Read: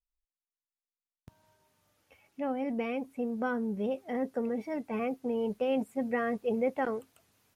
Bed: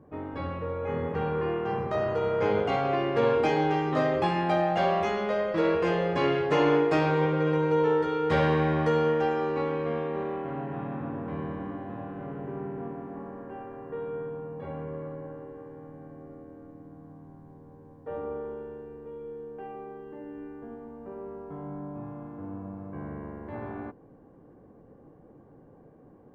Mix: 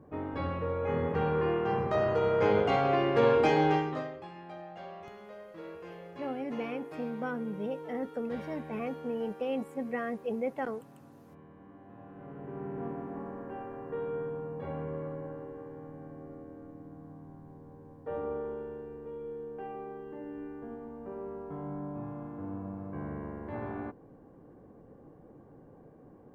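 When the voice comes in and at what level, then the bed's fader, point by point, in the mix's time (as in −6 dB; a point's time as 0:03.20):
3.80 s, −3.5 dB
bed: 0:03.75 0 dB
0:04.21 −20 dB
0:11.48 −20 dB
0:12.86 −0.5 dB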